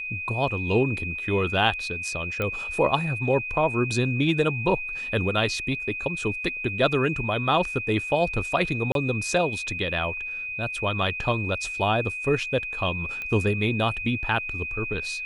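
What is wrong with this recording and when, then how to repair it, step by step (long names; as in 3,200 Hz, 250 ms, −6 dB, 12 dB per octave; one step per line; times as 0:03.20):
whistle 2,500 Hz −30 dBFS
0:02.42: click −15 dBFS
0:08.92–0:08.95: drop-out 32 ms
0:13.22: click −20 dBFS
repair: click removal
notch filter 2,500 Hz, Q 30
repair the gap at 0:08.92, 32 ms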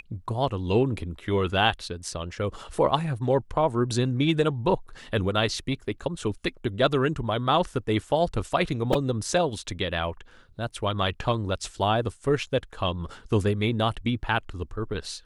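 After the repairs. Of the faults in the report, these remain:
none of them is left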